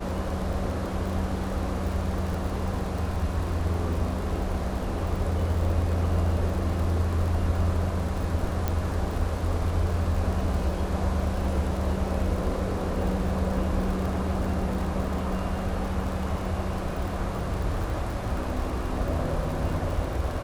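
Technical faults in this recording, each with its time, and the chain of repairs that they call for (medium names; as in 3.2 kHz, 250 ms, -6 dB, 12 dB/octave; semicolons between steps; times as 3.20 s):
crackle 55 per s -32 dBFS
8.68 s: pop -13 dBFS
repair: de-click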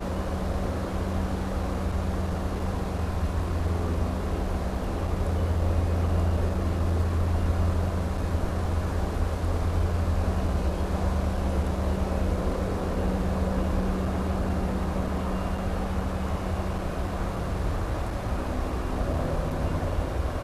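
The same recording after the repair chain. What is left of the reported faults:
8.68 s: pop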